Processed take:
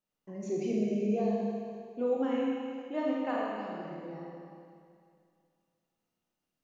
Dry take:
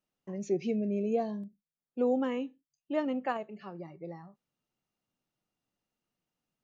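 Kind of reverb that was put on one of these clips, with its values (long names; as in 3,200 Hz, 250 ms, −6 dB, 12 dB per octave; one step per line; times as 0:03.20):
four-comb reverb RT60 2.3 s, combs from 26 ms, DRR −4.5 dB
level −5 dB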